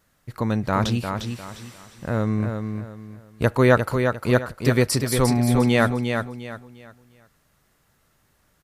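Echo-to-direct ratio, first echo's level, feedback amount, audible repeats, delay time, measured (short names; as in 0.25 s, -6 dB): -5.5 dB, -6.0 dB, 30%, 3, 0.352 s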